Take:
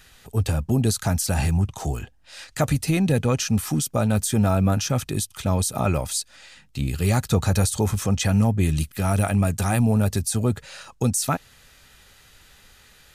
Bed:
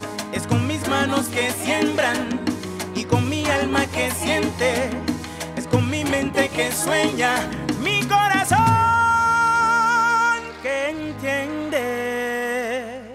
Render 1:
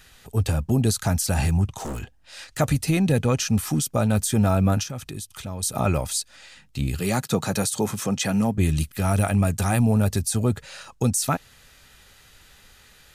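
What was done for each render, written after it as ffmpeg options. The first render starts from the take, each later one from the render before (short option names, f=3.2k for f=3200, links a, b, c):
-filter_complex "[0:a]asettb=1/sr,asplit=3[a][b][c];[a]atrim=end=1.814[d];[b]atrim=start=1.81:end=2.58,asetpts=PTS-STARTPTS,afade=t=in:d=0.004:c=qsin,afade=t=out:st=0.766:d=0.004:c=qsin,aeval=exprs='0.0531*(abs(mod(val(0)/0.0531+3,4)-2)-1)':c=same[e];[c]atrim=start=2.576[f];[d][e]acrossfade=d=0.004:c1=hsin:c2=qsin[g];[g][f]acrossfade=d=0.004:c1=qsin:c2=hsin,asettb=1/sr,asplit=3[h][i][j];[h]atrim=end=4.834[k];[i]atrim=start=4.83:end=5.63,asetpts=PTS-STARTPTS,afade=t=in:d=0.004:c=qsin,afade=t=out:st=0.796:d=0.004:c=qsin,acompressor=threshold=-34dB:ratio=2.5:attack=3.2:release=140:knee=1:detection=peak[l];[j]atrim=start=5.626[m];[k][l]acrossfade=d=0.004:c1=hsin:c2=qsin[n];[n][m]acrossfade=d=0.004:c1=qsin:c2=hsin,asettb=1/sr,asplit=3[o][p][q];[o]atrim=end=7.004[r];[p]atrim=start=7:end=8.58,asetpts=PTS-STARTPTS,afade=t=in:d=0.004:c=qsin,afade=t=out:st=1.576:d=0.004:c=qsin,highpass=f=140:w=0.5412,highpass=f=140:w=1.3066[s];[q]atrim=start=8.576[t];[r][s]acrossfade=d=0.004:c1=hsin:c2=qsin[u];[u][t]acrossfade=d=0.004:c1=qsin:c2=hsin"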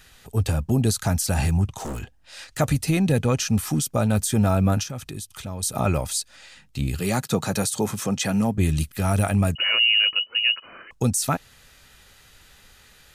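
-filter_complex "[0:a]asettb=1/sr,asplit=3[a][b][c];[a]atrim=end=9.554[d];[b]atrim=start=9.55:end=10.91,asetpts=PTS-STARTPTS,afade=t=in:d=0.004:c=qsin,afade=t=out:st=1.356:d=0.004:c=qsin,lowpass=f=2.6k:t=q:w=0.5098,lowpass=f=2.6k:t=q:w=0.6013,lowpass=f=2.6k:t=q:w=0.9,lowpass=f=2.6k:t=q:w=2.563,afreqshift=-3000[e];[c]atrim=start=10.906[f];[d][e]acrossfade=d=0.004:c1=hsin:c2=qsin[g];[g][f]acrossfade=d=0.004:c1=qsin:c2=hsin"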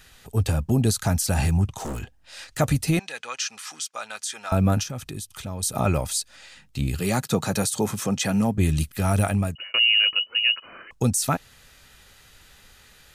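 -filter_complex "[0:a]asettb=1/sr,asplit=3[a][b][c];[a]atrim=end=2.994[d];[b]atrim=start=2.99:end=4.52,asetpts=PTS-STARTPTS,afade=t=in:d=0.004:c=qsin,afade=t=out:st=1.526:d=0.004:c=qsin,asuperpass=centerf=3000:order=4:qfactor=0.5[e];[c]atrim=start=4.516[f];[d][e]acrossfade=d=0.004:c1=hsin:c2=qsin[g];[g][f]acrossfade=d=0.004:c1=qsin:c2=hsin,asplit=2[h][i];[h]atrim=end=9.74,asetpts=PTS-STARTPTS,afade=t=out:st=9.25:d=0.49[j];[i]atrim=start=9.74,asetpts=PTS-STARTPTS,afade=t=in:d=0.004:c=hsin[k];[j][k]concat=n=2:v=0:a=1"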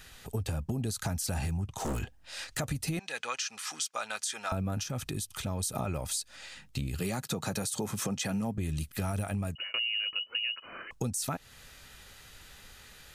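-af "alimiter=limit=-19.5dB:level=0:latency=1:release=280,acompressor=threshold=-29dB:ratio=6"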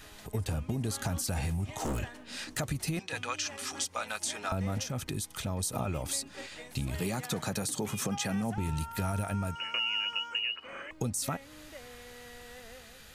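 -filter_complex "[1:a]volume=-26.5dB[a];[0:a][a]amix=inputs=2:normalize=0"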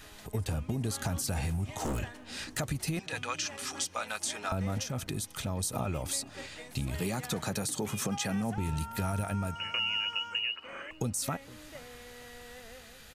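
-filter_complex "[0:a]asplit=2[a][b];[b]adelay=466,lowpass=f=2k:p=1,volume=-21dB,asplit=2[c][d];[d]adelay=466,lowpass=f=2k:p=1,volume=0.32[e];[a][c][e]amix=inputs=3:normalize=0"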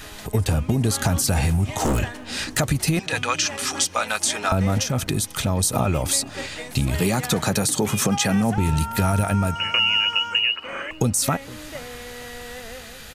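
-af "volume=12dB"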